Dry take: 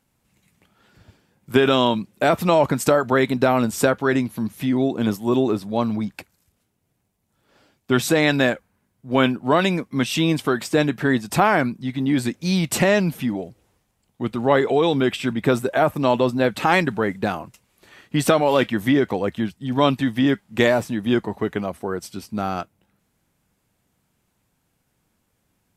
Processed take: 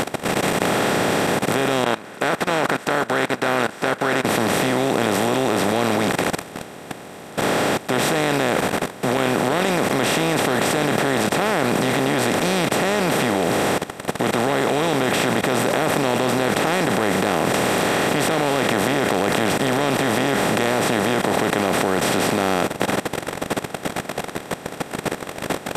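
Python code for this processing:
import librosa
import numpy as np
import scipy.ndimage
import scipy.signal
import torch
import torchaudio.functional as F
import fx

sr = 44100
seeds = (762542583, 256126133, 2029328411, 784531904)

y = fx.bandpass_q(x, sr, hz=1500.0, q=17.0, at=(1.84, 4.25))
y = fx.over_compress(y, sr, threshold_db=-23.0, ratio=-1.0, at=(9.17, 10.46))
y = fx.transient(y, sr, attack_db=-8, sustain_db=4, at=(16.48, 20.97))
y = fx.bin_compress(y, sr, power=0.2)
y = fx.level_steps(y, sr, step_db=18)
y = y * librosa.db_to_amplitude(-1.5)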